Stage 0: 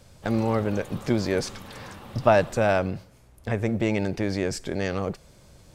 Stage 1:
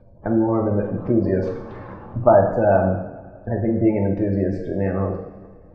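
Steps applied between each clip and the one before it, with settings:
gate on every frequency bin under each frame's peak −20 dB strong
low-pass filter 1,200 Hz 12 dB per octave
coupled-rooms reverb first 0.84 s, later 2.8 s, from −18 dB, DRR 0.5 dB
level +3 dB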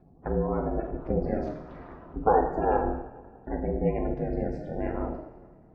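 ring modulation 160 Hz
level −5.5 dB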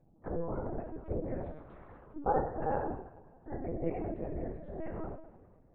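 linear-prediction vocoder at 8 kHz pitch kept
level −8 dB

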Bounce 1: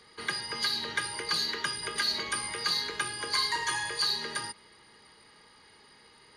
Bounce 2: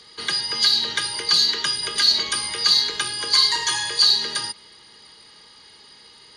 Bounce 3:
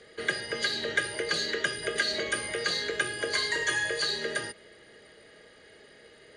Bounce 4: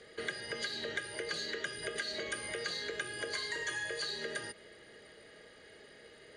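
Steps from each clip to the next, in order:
flat-topped bell 4,900 Hz +9 dB; level +4 dB
drawn EQ curve 230 Hz 0 dB, 640 Hz +11 dB, 930 Hz −13 dB, 1,700 Hz +4 dB, 4,900 Hz −16 dB, 7,800 Hz −4 dB, 13,000 Hz −18 dB; level −1.5 dB
downward compressor 3 to 1, threshold −35 dBFS, peak gain reduction 11 dB; level −2 dB

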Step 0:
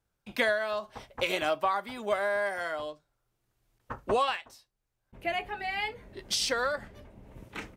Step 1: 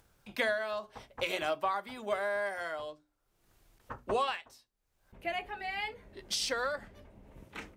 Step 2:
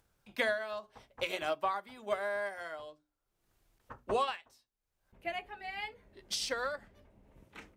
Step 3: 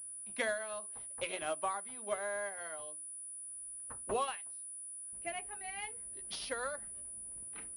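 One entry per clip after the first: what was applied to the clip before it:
mains-hum notches 60/120/180/240/300/360/420 Hz; upward compression, threshold −48 dBFS; level −4 dB
expander for the loud parts 1.5 to 1, over −42 dBFS
switching amplifier with a slow clock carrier 9,800 Hz; level −3.5 dB

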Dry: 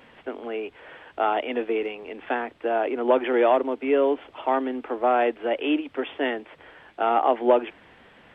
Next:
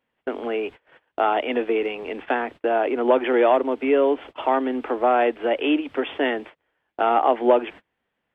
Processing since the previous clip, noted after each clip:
noise gate −41 dBFS, range −32 dB
in parallel at +1 dB: downward compressor, threshold −30 dBFS, peak gain reduction 15.5 dB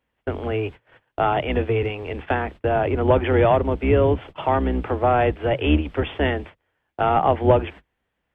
sub-octave generator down 2 octaves, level +3 dB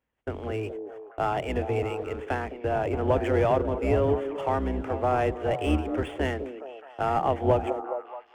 running median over 9 samples
echo through a band-pass that steps 210 ms, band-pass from 360 Hz, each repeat 0.7 octaves, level −5 dB
level −6.5 dB

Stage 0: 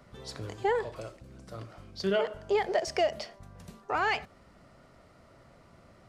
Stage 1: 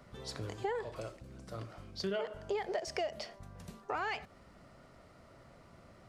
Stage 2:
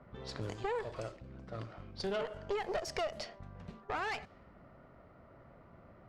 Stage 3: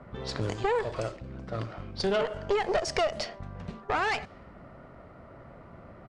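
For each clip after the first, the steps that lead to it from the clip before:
downward compressor 3 to 1, threshold −34 dBFS, peak gain reduction 9 dB; level −1 dB
tube saturation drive 33 dB, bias 0.7; low-pass that shuts in the quiet parts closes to 1,400 Hz, open at −38 dBFS; level +4.5 dB
downsampling to 22,050 Hz; level +9 dB

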